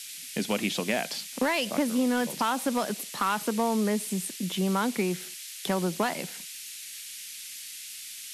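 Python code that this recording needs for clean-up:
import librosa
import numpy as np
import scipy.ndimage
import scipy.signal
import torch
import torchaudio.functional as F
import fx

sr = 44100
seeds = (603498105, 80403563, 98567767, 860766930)

y = fx.fix_declip(x, sr, threshold_db=-17.5)
y = fx.noise_reduce(y, sr, print_start_s=7.71, print_end_s=8.21, reduce_db=30.0)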